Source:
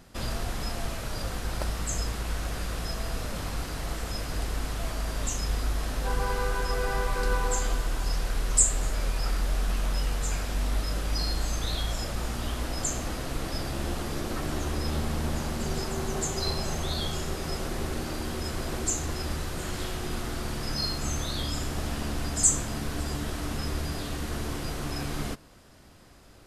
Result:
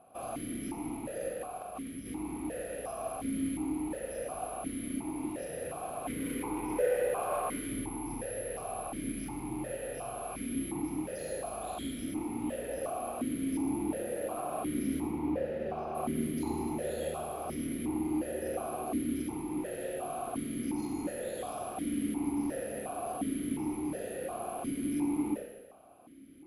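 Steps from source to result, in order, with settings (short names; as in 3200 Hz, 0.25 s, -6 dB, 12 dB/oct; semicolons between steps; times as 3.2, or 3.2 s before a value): tilt shelf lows +8 dB, about 1300 Hz; careless resampling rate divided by 4×, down filtered, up zero stuff; wavefolder -6.5 dBFS; 1.33–2.06 negative-ratio compressor -23 dBFS, ratio -1; 15.07–15.95 air absorption 160 m; Schroeder reverb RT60 1.2 s, combs from 26 ms, DRR 1 dB; vowel sequencer 2.8 Hz; gain +3.5 dB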